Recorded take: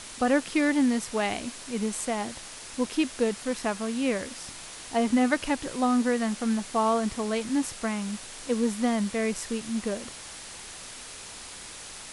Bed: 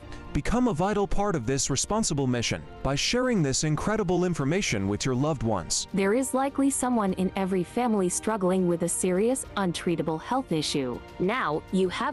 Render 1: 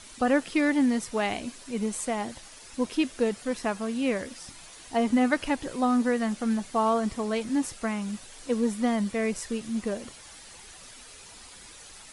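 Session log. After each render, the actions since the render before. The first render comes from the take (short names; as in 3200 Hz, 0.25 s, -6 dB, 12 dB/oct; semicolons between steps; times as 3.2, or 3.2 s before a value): denoiser 9 dB, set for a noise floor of -43 dBFS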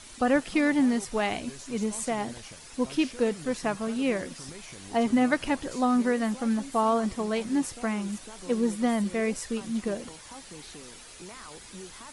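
add bed -20 dB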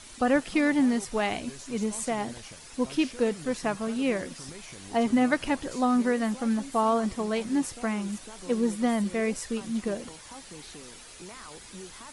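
nothing audible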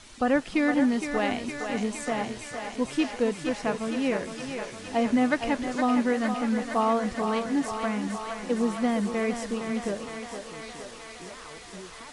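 air absorption 50 m; thinning echo 0.463 s, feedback 79%, high-pass 380 Hz, level -6 dB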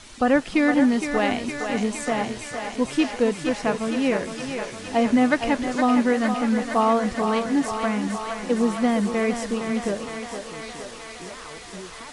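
gain +4.5 dB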